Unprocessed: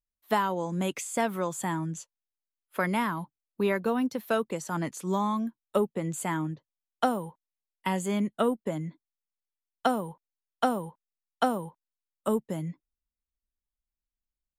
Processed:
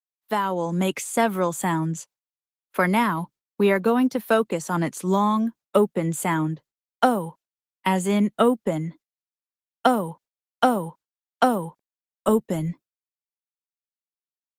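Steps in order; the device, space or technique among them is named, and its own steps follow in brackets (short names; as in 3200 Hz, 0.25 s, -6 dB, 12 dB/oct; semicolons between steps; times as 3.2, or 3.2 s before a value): gate with hold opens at -49 dBFS; 8.76–9.86 dynamic EQ 200 Hz, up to -4 dB, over -54 dBFS, Q 3.2; video call (HPF 120 Hz 24 dB/oct; AGC gain up to 7.5 dB; Opus 20 kbps 48000 Hz)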